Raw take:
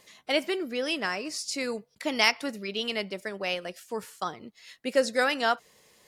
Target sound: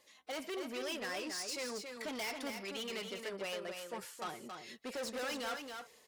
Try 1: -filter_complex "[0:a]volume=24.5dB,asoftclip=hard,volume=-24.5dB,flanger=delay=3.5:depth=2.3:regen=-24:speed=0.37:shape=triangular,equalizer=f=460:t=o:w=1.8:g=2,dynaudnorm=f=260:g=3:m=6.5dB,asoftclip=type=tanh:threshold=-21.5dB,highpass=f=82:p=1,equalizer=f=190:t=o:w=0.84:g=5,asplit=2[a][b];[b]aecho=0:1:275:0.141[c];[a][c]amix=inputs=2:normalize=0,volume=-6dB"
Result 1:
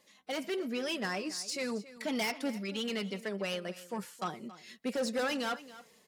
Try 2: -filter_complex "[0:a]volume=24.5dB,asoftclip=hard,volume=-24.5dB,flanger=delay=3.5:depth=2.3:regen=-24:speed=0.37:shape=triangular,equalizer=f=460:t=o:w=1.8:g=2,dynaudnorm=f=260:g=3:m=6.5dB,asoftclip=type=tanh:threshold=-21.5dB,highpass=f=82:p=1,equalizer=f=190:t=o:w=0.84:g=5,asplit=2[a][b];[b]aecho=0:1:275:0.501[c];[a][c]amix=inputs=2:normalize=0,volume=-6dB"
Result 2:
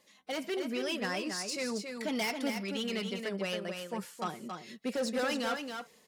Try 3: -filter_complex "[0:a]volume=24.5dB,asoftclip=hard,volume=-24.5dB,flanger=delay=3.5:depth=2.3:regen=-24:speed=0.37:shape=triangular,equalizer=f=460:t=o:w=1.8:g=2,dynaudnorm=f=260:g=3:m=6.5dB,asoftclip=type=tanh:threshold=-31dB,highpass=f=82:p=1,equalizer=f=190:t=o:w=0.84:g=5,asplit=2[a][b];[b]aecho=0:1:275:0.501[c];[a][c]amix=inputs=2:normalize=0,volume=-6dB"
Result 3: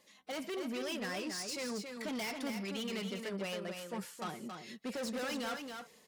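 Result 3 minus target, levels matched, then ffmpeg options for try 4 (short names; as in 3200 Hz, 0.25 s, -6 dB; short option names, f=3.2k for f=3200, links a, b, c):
250 Hz band +5.0 dB
-filter_complex "[0:a]volume=24.5dB,asoftclip=hard,volume=-24.5dB,flanger=delay=3.5:depth=2.3:regen=-24:speed=0.37:shape=triangular,equalizer=f=460:t=o:w=1.8:g=2,dynaudnorm=f=260:g=3:m=6.5dB,asoftclip=type=tanh:threshold=-31dB,highpass=f=82:p=1,equalizer=f=190:t=o:w=0.84:g=-6.5,asplit=2[a][b];[b]aecho=0:1:275:0.501[c];[a][c]amix=inputs=2:normalize=0,volume=-6dB"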